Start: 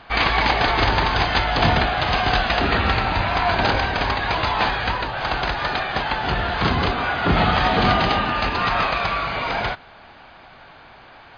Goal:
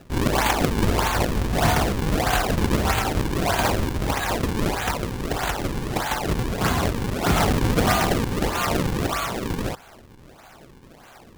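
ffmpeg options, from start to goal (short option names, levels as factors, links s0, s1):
-af "acrusher=samples=39:mix=1:aa=0.000001:lfo=1:lforange=62.4:lforate=1.6,volume=0.794"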